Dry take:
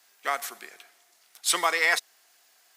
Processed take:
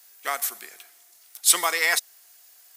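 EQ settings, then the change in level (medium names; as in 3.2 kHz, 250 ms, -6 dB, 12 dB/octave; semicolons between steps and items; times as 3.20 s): treble shelf 4.6 kHz +6 dB; treble shelf 9.6 kHz +11 dB; -1.0 dB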